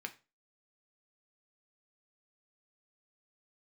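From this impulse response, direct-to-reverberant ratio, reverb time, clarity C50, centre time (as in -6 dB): 5.5 dB, 0.30 s, 16.5 dB, 6 ms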